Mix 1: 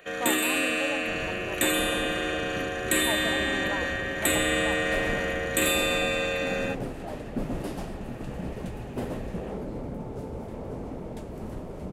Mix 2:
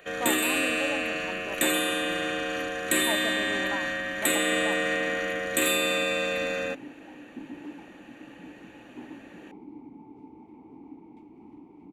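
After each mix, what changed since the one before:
second sound: add formant filter u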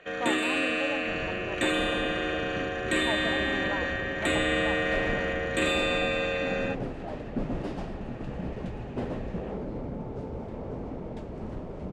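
second sound: remove formant filter u
master: add high-frequency loss of the air 120 metres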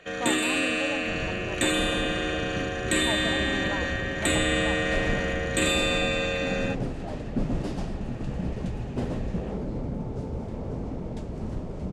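master: add bass and treble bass +6 dB, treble +11 dB

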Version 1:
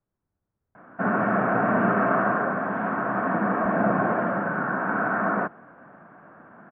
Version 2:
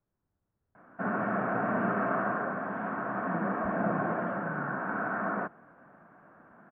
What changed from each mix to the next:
background −7.5 dB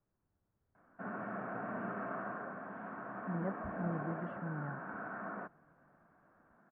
background −11.5 dB

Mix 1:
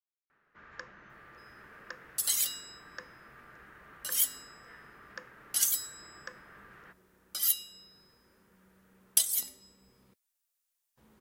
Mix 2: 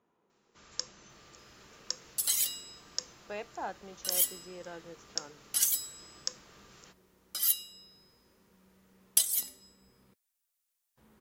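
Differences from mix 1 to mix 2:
speech: unmuted
first sound: remove low-pass with resonance 1,700 Hz, resonance Q 3.4

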